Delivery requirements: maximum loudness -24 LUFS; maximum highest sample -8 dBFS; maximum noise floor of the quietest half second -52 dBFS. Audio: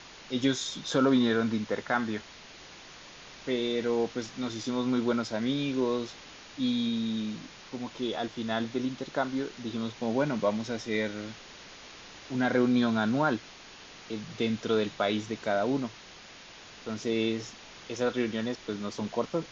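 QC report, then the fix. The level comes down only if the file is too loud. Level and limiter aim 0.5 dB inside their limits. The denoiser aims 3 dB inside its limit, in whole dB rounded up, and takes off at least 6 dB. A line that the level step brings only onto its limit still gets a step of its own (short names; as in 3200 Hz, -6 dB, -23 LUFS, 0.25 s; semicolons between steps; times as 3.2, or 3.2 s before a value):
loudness -30.5 LUFS: OK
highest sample -13.0 dBFS: OK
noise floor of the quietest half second -49 dBFS: fail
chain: denoiser 6 dB, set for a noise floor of -49 dBFS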